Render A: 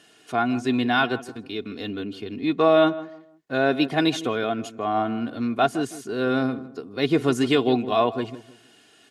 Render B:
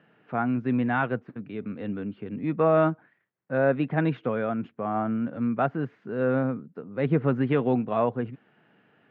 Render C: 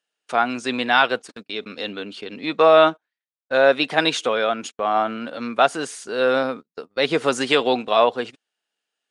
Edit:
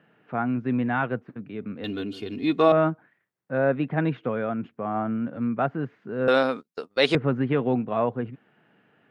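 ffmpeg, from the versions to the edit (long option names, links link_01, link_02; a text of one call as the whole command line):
ffmpeg -i take0.wav -i take1.wav -i take2.wav -filter_complex "[1:a]asplit=3[link_01][link_02][link_03];[link_01]atrim=end=1.842[link_04];[0:a]atrim=start=1.838:end=2.722[link_05];[link_02]atrim=start=2.718:end=6.282[link_06];[2:a]atrim=start=6.278:end=7.152[link_07];[link_03]atrim=start=7.148[link_08];[link_04][link_05]acrossfade=duration=0.004:curve1=hsin:curve2=hsin[link_09];[link_09][link_06]acrossfade=duration=0.004:curve1=hsin:curve2=hsin[link_10];[link_10][link_07]acrossfade=duration=0.004:curve1=hsin:curve2=hsin[link_11];[link_11][link_08]acrossfade=duration=0.004:curve1=hsin:curve2=hsin" out.wav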